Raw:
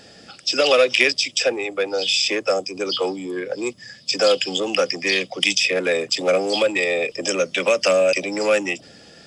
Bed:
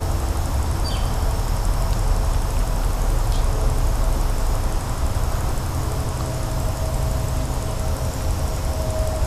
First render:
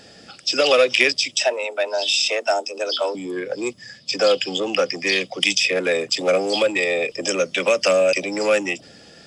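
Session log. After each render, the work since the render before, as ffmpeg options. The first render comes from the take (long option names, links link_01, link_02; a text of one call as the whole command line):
ffmpeg -i in.wav -filter_complex "[0:a]asettb=1/sr,asplit=3[link_01][link_02][link_03];[link_01]atrim=end=1.364[link_04];[link_02]atrim=start=1.36:end=3.15,asetpts=PTS-STARTPTS,afade=type=in:duration=0.004:curve=qsin,afade=type=out:start_time=1.786:duration=0.004:curve=qsin,afreqshift=120[link_05];[link_03]atrim=start=3.146[link_06];[link_04][link_05]acrossfade=duration=0.004:curve1=hsin:curve2=qsin[link_07];[link_07][link_06]acrossfade=duration=0.004:curve1=qsin:curve2=hsin,asettb=1/sr,asplit=3[link_08][link_09][link_10];[link_08]atrim=end=3.984[link_11];[link_09]atrim=start=3.98:end=4.95,asetpts=PTS-STARTPTS,afade=type=in:duration=0.004:curve=qsin,afade=type=out:start_time=0.966:duration=0.004:curve=qsin,highshelf=frequency=8800:gain=-11.5[link_12];[link_10]atrim=start=4.946[link_13];[link_11][link_12]acrossfade=duration=0.004:curve1=hsin:curve2=qsin[link_14];[link_14][link_13]acrossfade=duration=0.004:curve1=qsin:curve2=hsin" out.wav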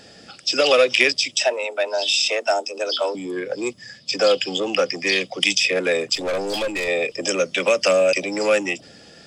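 ffmpeg -i in.wav -filter_complex "[0:a]asettb=1/sr,asplit=3[link_01][link_02][link_03];[link_01]atrim=end=6.154[link_04];[link_02]atrim=start=6.15:end=6.88,asetpts=PTS-STARTPTS,afade=type=in:duration=0.004:curve=qsin,afade=type=out:start_time=0.726:duration=0.004:curve=qsin,aeval=exprs='(tanh(10*val(0)+0.35)-tanh(0.35))/10':channel_layout=same[link_05];[link_03]atrim=start=6.876[link_06];[link_04][link_05]acrossfade=duration=0.004:curve1=hsin:curve2=qsin[link_07];[link_07][link_06]acrossfade=duration=0.004:curve1=qsin:curve2=hsin" out.wav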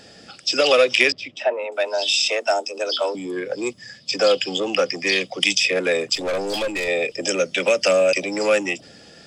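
ffmpeg -i in.wav -filter_complex "[0:a]asettb=1/sr,asplit=3[link_01][link_02][link_03];[link_01]atrim=end=1.124[link_04];[link_02]atrim=start=1.12:end=1.72,asetpts=PTS-STARTPTS,afade=type=in:duration=0.004:curve=qsin,afade=type=out:start_time=0.596:duration=0.004:curve=qsin,lowpass=1800[link_05];[link_03]atrim=start=1.716[link_06];[link_04][link_05]acrossfade=duration=0.004:curve1=hsin:curve2=qsin[link_07];[link_07][link_06]acrossfade=duration=0.004:curve1=qsin:curve2=hsin,asettb=1/sr,asplit=3[link_08][link_09][link_10];[link_08]atrim=end=6.794[link_11];[link_09]atrim=start=6.79:end=7.92,asetpts=PTS-STARTPTS,afade=type=in:duration=0.004:curve=qsin,afade=type=out:start_time=1.126:duration=0.004:curve=qsin,bandreject=frequency=1100:width=5.9[link_12];[link_10]atrim=start=7.916[link_13];[link_11][link_12]acrossfade=duration=0.004:curve1=hsin:curve2=qsin[link_14];[link_14][link_13]acrossfade=duration=0.004:curve1=qsin:curve2=hsin" out.wav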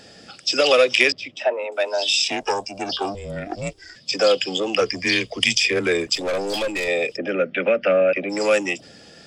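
ffmpeg -i in.wav -filter_complex "[0:a]asettb=1/sr,asplit=3[link_01][link_02][link_03];[link_01]atrim=end=2.244[link_04];[link_02]atrim=start=2.24:end=3.96,asetpts=PTS-STARTPTS,afade=type=in:duration=0.004:curve=qsin,afade=type=out:start_time=1.716:duration=0.004:curve=qsin,aeval=exprs='val(0)*sin(2*PI*200*n/s)':channel_layout=same[link_05];[link_03]atrim=start=3.956[link_06];[link_04][link_05]acrossfade=duration=0.004:curve1=hsin:curve2=qsin[link_07];[link_07][link_06]acrossfade=duration=0.004:curve1=qsin:curve2=hsin,asettb=1/sr,asplit=3[link_08][link_09][link_10];[link_08]atrim=end=4.814[link_11];[link_09]atrim=start=4.81:end=6.07,asetpts=PTS-STARTPTS,afade=type=in:duration=0.004:curve=qsin,afade=type=out:start_time=1.256:duration=0.004:curve=qsin,afreqshift=-71[link_12];[link_10]atrim=start=6.066[link_13];[link_11][link_12]acrossfade=duration=0.004:curve1=hsin:curve2=qsin[link_14];[link_14][link_13]acrossfade=duration=0.004:curve1=qsin:curve2=hsin,asplit=3[link_15][link_16][link_17];[link_15]afade=type=out:start_time=7.16:duration=0.02[link_18];[link_16]highpass=100,equalizer=frequency=230:width_type=q:width=4:gain=7,equalizer=frequency=980:width_type=q:width=4:gain=-9,equalizer=frequency=1500:width_type=q:width=4:gain=5,lowpass=frequency=2400:width=0.5412,lowpass=frequency=2400:width=1.3066,afade=type=in:start_time=7.16:duration=0.02,afade=type=out:start_time=8.29:duration=0.02[link_19];[link_17]afade=type=in:start_time=8.29:duration=0.02[link_20];[link_18][link_19][link_20]amix=inputs=3:normalize=0" out.wav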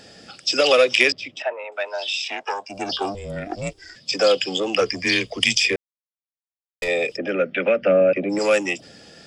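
ffmpeg -i in.wav -filter_complex "[0:a]asettb=1/sr,asplit=3[link_01][link_02][link_03];[link_01]atrim=end=1.424[link_04];[link_02]atrim=start=1.42:end=2.7,asetpts=PTS-STARTPTS,afade=type=in:duration=0.004:curve=qsin,afade=type=out:start_time=1.276:duration=0.004:curve=qsin,bandpass=frequency=1500:width_type=q:width=0.79[link_05];[link_03]atrim=start=2.696[link_06];[link_04][link_05]acrossfade=duration=0.004:curve1=hsin:curve2=qsin[link_07];[link_07][link_06]acrossfade=duration=0.004:curve1=qsin:curve2=hsin,asettb=1/sr,asplit=3[link_08][link_09][link_10];[link_08]atrim=end=7.814[link_11];[link_09]atrim=start=7.81:end=8.39,asetpts=PTS-STARTPTS,afade=type=in:duration=0.004:curve=qsin,afade=type=out:start_time=0.576:duration=0.004:curve=qsin,tiltshelf=frequency=700:gain=6[link_12];[link_10]atrim=start=8.386[link_13];[link_11][link_12]acrossfade=duration=0.004:curve1=hsin:curve2=qsin[link_14];[link_14][link_13]acrossfade=duration=0.004:curve1=qsin:curve2=hsin,asplit=3[link_15][link_16][link_17];[link_15]atrim=end=5.76,asetpts=PTS-STARTPTS,afade=type=out:start_time=5.756:duration=0.004:curve=hsin[link_18];[link_16]atrim=start=5.76:end=6.82,asetpts=PTS-STARTPTS,volume=0[link_19];[link_17]atrim=start=6.82,asetpts=PTS-STARTPTS,afade=type=in:duration=0.004:curve=hsin[link_20];[link_18][link_19][link_20]concat=n=3:v=0:a=1" out.wav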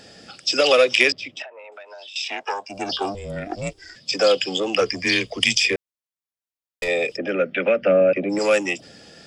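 ffmpeg -i in.wav -filter_complex "[0:a]asettb=1/sr,asplit=3[link_01][link_02][link_03];[link_01]atrim=end=1.444[link_04];[link_02]atrim=start=1.44:end=2.16,asetpts=PTS-STARTPTS,afade=type=in:duration=0.004:curve=qsin,afade=type=out:start_time=0.716:duration=0.004:curve=qsin,acompressor=threshold=-37dB:ratio=10:attack=3.2:release=140:knee=1:detection=peak[link_05];[link_03]atrim=start=2.156[link_06];[link_04][link_05]acrossfade=duration=0.004:curve1=hsin:curve2=qsin[link_07];[link_07][link_06]acrossfade=duration=0.004:curve1=qsin:curve2=hsin" out.wav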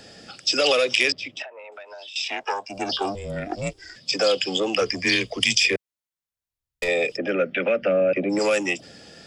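ffmpeg -i in.wav -filter_complex "[0:a]acrossover=split=110|3000[link_01][link_02][link_03];[link_01]acompressor=mode=upward:threshold=-60dB:ratio=2.5[link_04];[link_02]alimiter=limit=-13dB:level=0:latency=1:release=54[link_05];[link_04][link_05][link_03]amix=inputs=3:normalize=0" out.wav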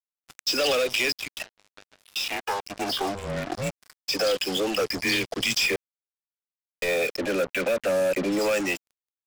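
ffmpeg -i in.wav -af "acrusher=bits=4:mix=0:aa=0.5,asoftclip=type=tanh:threshold=-18.5dB" out.wav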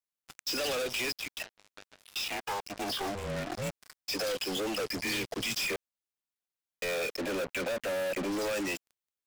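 ffmpeg -i in.wav -af "asoftclip=type=hard:threshold=-30.5dB" out.wav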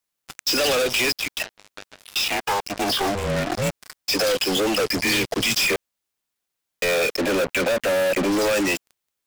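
ffmpeg -i in.wav -af "volume=11.5dB" out.wav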